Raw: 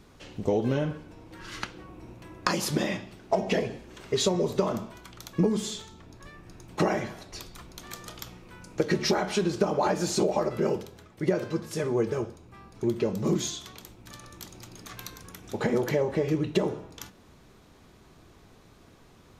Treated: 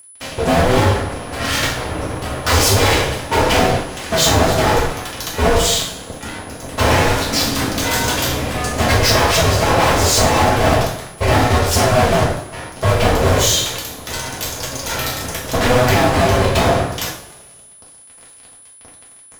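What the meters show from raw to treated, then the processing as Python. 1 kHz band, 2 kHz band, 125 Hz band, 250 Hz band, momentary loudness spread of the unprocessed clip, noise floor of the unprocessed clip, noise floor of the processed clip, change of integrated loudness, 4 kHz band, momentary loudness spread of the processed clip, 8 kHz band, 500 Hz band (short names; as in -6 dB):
+17.5 dB, +18.5 dB, +16.0 dB, +8.5 dB, 19 LU, -56 dBFS, -43 dBFS, +12.5 dB, +18.5 dB, 12 LU, +18.5 dB, +11.0 dB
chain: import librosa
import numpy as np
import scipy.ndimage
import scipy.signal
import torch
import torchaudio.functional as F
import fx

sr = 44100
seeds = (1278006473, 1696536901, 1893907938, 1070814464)

y = fx.rider(x, sr, range_db=4, speed_s=0.5)
y = y * np.sin(2.0 * np.pi * 250.0 * np.arange(len(y)) / sr)
y = fx.fuzz(y, sr, gain_db=42.0, gate_db=-49.0)
y = y + 10.0 ** (-36.0 / 20.0) * np.sin(2.0 * np.pi * 10000.0 * np.arange(len(y)) / sr)
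y = fx.rev_double_slope(y, sr, seeds[0], early_s=0.48, late_s=1.7, knee_db=-19, drr_db=-4.5)
y = F.gain(torch.from_numpy(y), -3.5).numpy()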